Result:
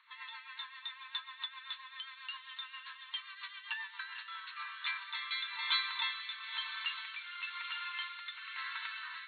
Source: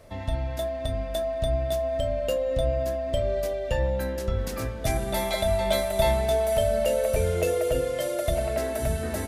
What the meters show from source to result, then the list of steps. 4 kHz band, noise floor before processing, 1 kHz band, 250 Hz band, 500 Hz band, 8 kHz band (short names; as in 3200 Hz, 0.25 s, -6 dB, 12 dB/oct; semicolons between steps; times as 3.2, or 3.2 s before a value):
-0.5 dB, -33 dBFS, -12.5 dB, under -40 dB, under -40 dB, under -40 dB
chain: diffused feedback echo 0.488 s, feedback 59%, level -10 dB; rotary speaker horn 7.5 Hz, later 1 Hz, at 3.8; FFT band-pass 900–4400 Hz; gain +1.5 dB